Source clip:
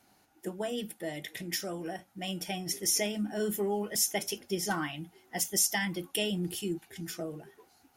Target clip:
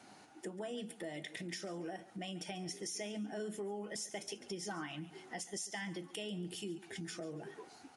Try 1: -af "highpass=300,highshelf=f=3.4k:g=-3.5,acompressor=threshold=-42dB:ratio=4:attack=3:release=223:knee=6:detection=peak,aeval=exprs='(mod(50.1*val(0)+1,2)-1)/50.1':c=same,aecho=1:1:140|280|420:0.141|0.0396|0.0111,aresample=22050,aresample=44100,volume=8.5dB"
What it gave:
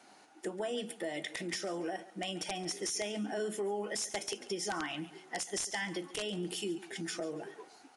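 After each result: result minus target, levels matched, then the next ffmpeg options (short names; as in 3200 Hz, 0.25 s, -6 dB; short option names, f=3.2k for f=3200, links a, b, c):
compressor: peak gain reduction -6.5 dB; 125 Hz band -5.5 dB
-af "highpass=300,highshelf=f=3.4k:g=-3.5,acompressor=threshold=-50.5dB:ratio=4:attack=3:release=223:knee=6:detection=peak,aeval=exprs='(mod(50.1*val(0)+1,2)-1)/50.1':c=same,aecho=1:1:140|280|420:0.141|0.0396|0.0111,aresample=22050,aresample=44100,volume=8.5dB"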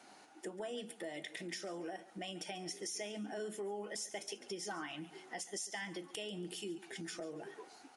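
125 Hz band -5.5 dB
-af "highpass=140,highshelf=f=3.4k:g=-3.5,acompressor=threshold=-50.5dB:ratio=4:attack=3:release=223:knee=6:detection=peak,aeval=exprs='(mod(50.1*val(0)+1,2)-1)/50.1':c=same,aecho=1:1:140|280|420:0.141|0.0396|0.0111,aresample=22050,aresample=44100,volume=8.5dB"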